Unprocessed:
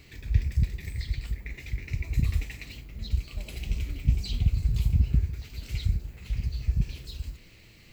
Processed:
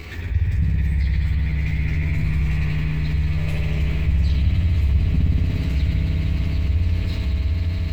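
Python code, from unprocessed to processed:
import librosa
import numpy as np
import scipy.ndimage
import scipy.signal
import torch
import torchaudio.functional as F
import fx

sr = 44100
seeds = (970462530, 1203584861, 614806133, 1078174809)

p1 = fx.peak_eq(x, sr, hz=1100.0, db=4.5, octaves=1.7)
p2 = fx.level_steps(p1, sr, step_db=10)
p3 = fx.high_shelf(p2, sr, hz=3100.0, db=-8.0)
p4 = fx.doubler(p3, sr, ms=12.0, db=-2)
p5 = p4 + fx.echo_swell(p4, sr, ms=151, loudest=8, wet_db=-12.5, dry=0)
p6 = fx.rev_spring(p5, sr, rt60_s=3.4, pass_ms=(59,), chirp_ms=40, drr_db=-4.5)
y = fx.env_flatten(p6, sr, amount_pct=50)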